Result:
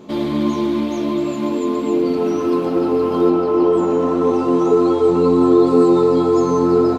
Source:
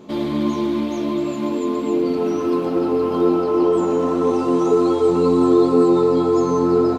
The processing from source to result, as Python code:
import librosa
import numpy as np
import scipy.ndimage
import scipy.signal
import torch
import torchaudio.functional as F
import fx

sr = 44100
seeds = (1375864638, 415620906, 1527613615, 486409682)

y = fx.high_shelf(x, sr, hz=5000.0, db=-7.5, at=(3.3, 5.67))
y = y * 10.0 ** (2.0 / 20.0)